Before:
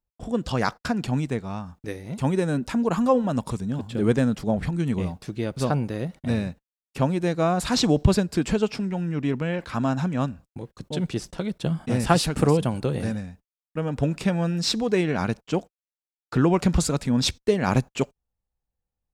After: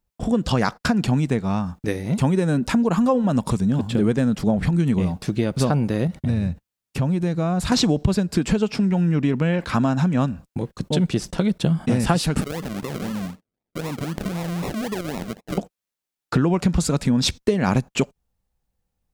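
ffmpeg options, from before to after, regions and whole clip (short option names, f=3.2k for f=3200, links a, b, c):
-filter_complex "[0:a]asettb=1/sr,asplit=3[a][b][c];[a]atrim=end=6.074[d];[b]atrim=start=6.07:end=7.72,asetpts=PTS-STARTPTS,afade=t=in:d=0.004:c=qsin,afade=t=out:st=1.646:d=0.004:c=qsin,equalizer=f=85:t=o:w=1.6:g=11.5,acompressor=threshold=-36dB:ratio=2:attack=3.2:release=140:knee=1:detection=peak[e];[c]atrim=start=7.716[f];[d][e]acrossfade=d=0.004:c1=hsin:c2=qsin[g];[g][f]acrossfade=d=0.004:c1=qsin:c2=hsin,asettb=1/sr,asplit=3[h][i][j];[h]atrim=end=12.414[k];[i]atrim=start=12.41:end=15.58,asetpts=PTS-STARTPTS,afade=t=in:d=0.004:c=qsin,afade=t=out:st=3.166:d=0.004:c=qsin,highpass=180,acompressor=threshold=-34dB:ratio=8:attack=3.2:release=140:knee=1:detection=peak,acrusher=samples=40:mix=1:aa=0.000001:lfo=1:lforange=24:lforate=3.9[l];[j]atrim=start=15.576[m];[k][l]acrossfade=d=0.004:c1=hsin:c2=qsin[n];[n][m]acrossfade=d=0.004:c1=qsin:c2=hsin,equalizer=f=190:w=1.7:g=4,acompressor=threshold=-25dB:ratio=5,volume=8.5dB"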